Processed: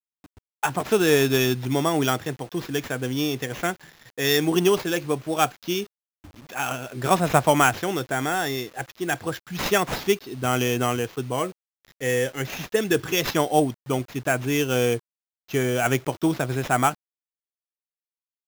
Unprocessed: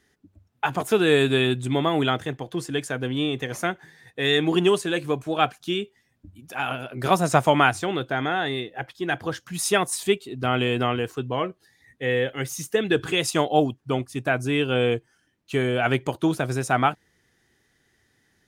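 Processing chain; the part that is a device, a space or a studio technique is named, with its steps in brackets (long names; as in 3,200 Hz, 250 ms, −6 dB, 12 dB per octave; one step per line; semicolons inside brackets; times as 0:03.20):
early 8-bit sampler (sample-rate reduction 9,000 Hz, jitter 0%; bit reduction 8 bits)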